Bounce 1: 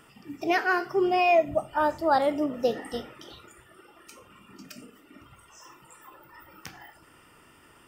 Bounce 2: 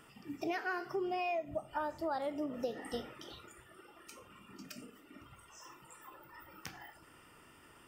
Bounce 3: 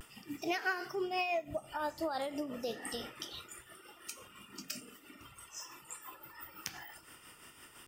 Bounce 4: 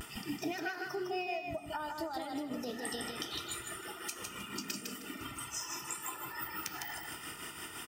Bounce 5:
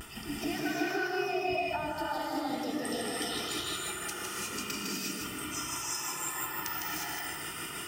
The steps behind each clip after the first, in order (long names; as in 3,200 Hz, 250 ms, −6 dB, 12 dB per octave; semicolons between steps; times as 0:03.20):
downward compressor 6 to 1, threshold −30 dBFS, peak gain reduction 13 dB; level −4 dB
high-shelf EQ 2,200 Hz +11.5 dB; pitch vibrato 0.3 Hz 23 cents; amplitude tremolo 5.9 Hz, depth 52%; level +1.5 dB
downward compressor 12 to 1, threshold −46 dBFS, peak gain reduction 17.5 dB; notch comb filter 550 Hz; on a send: repeating echo 156 ms, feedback 24%, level −4 dB; on the sum: level +10.5 dB
reverb whose tail is shaped and stops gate 390 ms rising, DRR −4.5 dB